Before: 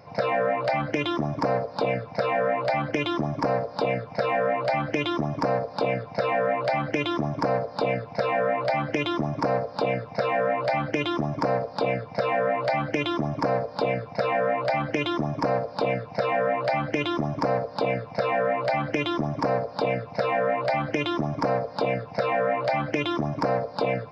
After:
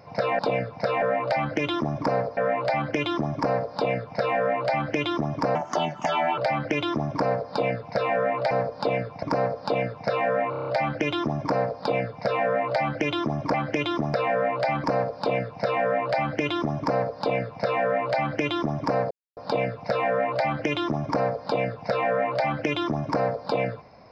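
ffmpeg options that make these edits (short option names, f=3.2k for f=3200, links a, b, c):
-filter_complex "[0:a]asplit=18[a][b][c][d][e][f][g][h][i][j][k][l][m][n][o][p][q][r];[a]atrim=end=0.392[s];[b]atrim=start=1.738:end=2.372[t];[c]atrim=start=0.388:end=1.742[u];[d]atrim=start=2.368:end=5.554[v];[e]atrim=start=5.55:end=6.61,asetpts=PTS-STARTPTS,asetrate=56448,aresample=44100,atrim=end_sample=36520,asetpts=PTS-STARTPTS[w];[f]atrim=start=6.606:end=8.742[x];[g]atrim=start=13.468:end=14.192[y];[h]atrim=start=9.338:end=10.642[z];[i]atrim=start=10.608:end=10.642[aa];[j]atrim=start=10.608:end=10.642[ab];[k]atrim=start=10.608:end=10.642[ac];[l]atrim=start=10.608:end=10.642[ad];[m]atrim=start=10.608:end=10.642[ae];[n]atrim=start=10.608:end=13.472[af];[o]atrim=start=8.738:end=9.342[ag];[p]atrim=start=14.188:end=14.892[ah];[q]atrim=start=15.388:end=19.66,asetpts=PTS-STARTPTS,afade=t=out:st=4.268:d=0.004:c=hsin,apad=pad_dur=0.26[ai];[r]atrim=start=19.66,asetpts=PTS-STARTPTS,afade=t=in:d=0.004:c=hsin[aj];[s][t]acrossfade=d=0.004:c1=hsin:c2=hsin[ak];[ak][u]acrossfade=d=0.004:c1=hsin:c2=hsin[al];[al][v]acrossfade=d=0.004:c1=hsin:c2=hsin[am];[am][w]acrossfade=d=0.004:c1=hsin:c2=hsin[an];[an][x]acrossfade=d=0.004:c1=hsin:c2=hsin[ao];[ao][y]acrossfade=d=0.004:c1=hsin:c2=hsin[ap];[ap][z]acrossfade=d=0.004:c1=hsin:c2=hsin[aq];[aq][aa]acrossfade=d=0.004:c1=hsin:c2=hsin[ar];[ar][ab]acrossfade=d=0.004:c1=hsin:c2=hsin[as];[as][ac]acrossfade=d=0.004:c1=hsin:c2=hsin[at];[at][ad]acrossfade=d=0.004:c1=hsin:c2=hsin[au];[au][ae]acrossfade=d=0.004:c1=hsin:c2=hsin[av];[av][af]acrossfade=d=0.004:c1=hsin:c2=hsin[aw];[aw][ag]acrossfade=d=0.004:c1=hsin:c2=hsin[ax];[ax][ah]acrossfade=d=0.004:c1=hsin:c2=hsin[ay];[ai][aj]concat=n=2:v=0:a=1[az];[ay][az]acrossfade=d=0.004:c1=hsin:c2=hsin"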